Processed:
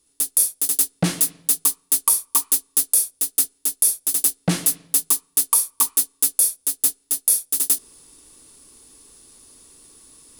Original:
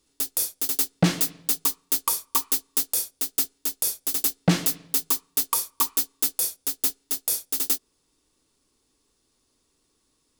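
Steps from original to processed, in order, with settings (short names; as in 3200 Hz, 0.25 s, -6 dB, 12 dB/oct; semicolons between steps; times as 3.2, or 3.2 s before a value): reverse; upward compressor, threshold -39 dBFS; reverse; bell 10000 Hz +13.5 dB 0.57 oct; gain -1 dB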